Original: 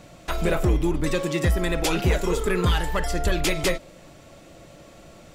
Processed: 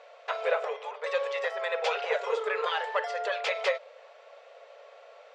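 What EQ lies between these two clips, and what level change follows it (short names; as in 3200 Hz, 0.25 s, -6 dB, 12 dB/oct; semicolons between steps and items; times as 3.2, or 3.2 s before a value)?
brick-wall FIR band-pass 420–13000 Hz; air absorption 160 m; high shelf 6900 Hz -12 dB; 0.0 dB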